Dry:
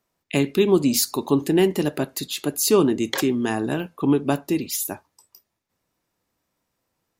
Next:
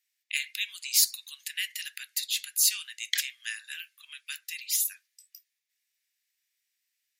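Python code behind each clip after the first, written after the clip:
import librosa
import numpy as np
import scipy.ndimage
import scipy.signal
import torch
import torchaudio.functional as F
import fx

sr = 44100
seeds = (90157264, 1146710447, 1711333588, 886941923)

y = scipy.signal.sosfilt(scipy.signal.butter(8, 1800.0, 'highpass', fs=sr, output='sos'), x)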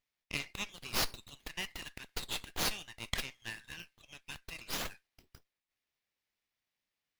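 y = fx.running_max(x, sr, window=5)
y = F.gain(torch.from_numpy(y), -6.5).numpy()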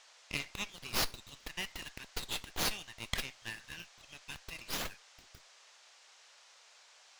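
y = fx.dmg_noise_band(x, sr, seeds[0], low_hz=530.0, high_hz=6800.0, level_db=-61.0)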